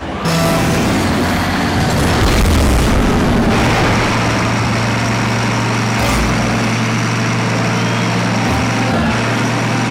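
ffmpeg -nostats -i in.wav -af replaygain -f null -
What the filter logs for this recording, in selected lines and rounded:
track_gain = -2.0 dB
track_peak = 0.269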